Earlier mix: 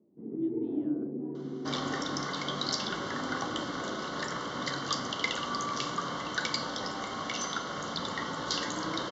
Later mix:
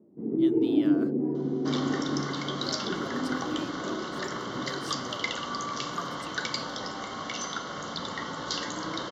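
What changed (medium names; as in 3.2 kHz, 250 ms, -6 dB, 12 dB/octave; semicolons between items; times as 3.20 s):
speech: remove band-pass filter 200 Hz, Q 1.5; first sound +8.5 dB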